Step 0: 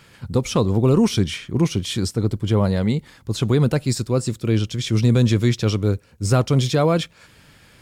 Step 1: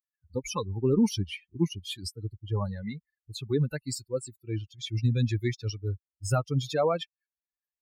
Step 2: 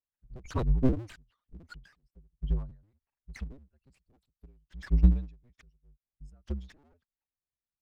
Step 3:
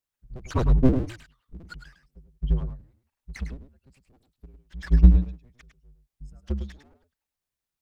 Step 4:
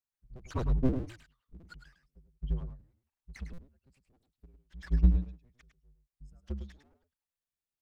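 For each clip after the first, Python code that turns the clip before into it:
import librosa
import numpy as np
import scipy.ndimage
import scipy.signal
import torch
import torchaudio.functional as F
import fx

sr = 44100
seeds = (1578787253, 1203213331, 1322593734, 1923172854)

y1 = fx.bin_expand(x, sr, power=3.0)
y1 = fx.low_shelf(y1, sr, hz=98.0, db=-6.0)
y1 = y1 * librosa.db_to_amplitude(-2.0)
y2 = fx.cycle_switch(y1, sr, every=2, mode='inverted')
y2 = fx.riaa(y2, sr, side='playback')
y2 = fx.end_taper(y2, sr, db_per_s=130.0)
y2 = y2 * librosa.db_to_amplitude(-4.5)
y3 = y2 + 10.0 ** (-8.5 / 20.0) * np.pad(y2, (int(104 * sr / 1000.0), 0))[:len(y2)]
y3 = y3 * librosa.db_to_amplitude(6.0)
y4 = fx.buffer_glitch(y3, sr, at_s=(3.53, 7.31), block=256, repeats=8)
y4 = y4 * librosa.db_to_amplitude(-9.0)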